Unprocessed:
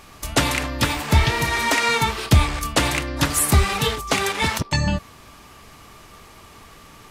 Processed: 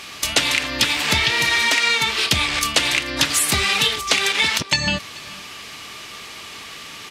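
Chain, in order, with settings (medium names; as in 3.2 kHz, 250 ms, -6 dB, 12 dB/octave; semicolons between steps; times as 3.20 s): frequency weighting D; compression 6:1, threshold -20 dBFS, peak gain reduction 12.5 dB; on a send: delay 433 ms -22 dB; on the sum: trim +4.5 dB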